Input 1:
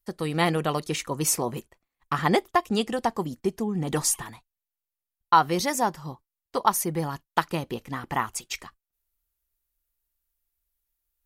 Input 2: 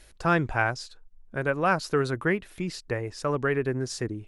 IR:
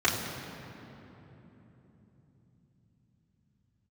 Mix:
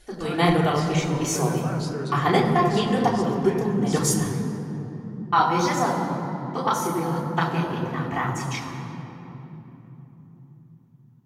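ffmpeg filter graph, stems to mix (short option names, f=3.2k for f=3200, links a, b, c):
-filter_complex "[0:a]volume=-0.5dB,asplit=2[a][b];[b]volume=-7.5dB[c];[1:a]alimiter=level_in=1.5dB:limit=-24dB:level=0:latency=1,volume=-1.5dB,volume=1dB,asplit=3[d][e][f];[e]volume=-13.5dB[g];[f]apad=whole_len=496481[h];[a][h]sidechaingate=range=-33dB:threshold=-37dB:ratio=16:detection=peak[i];[2:a]atrim=start_sample=2205[j];[c][g]amix=inputs=2:normalize=0[k];[k][j]afir=irnorm=-1:irlink=0[l];[i][d][l]amix=inputs=3:normalize=0,flanger=delay=5.4:depth=6.1:regen=-47:speed=1.9:shape=sinusoidal"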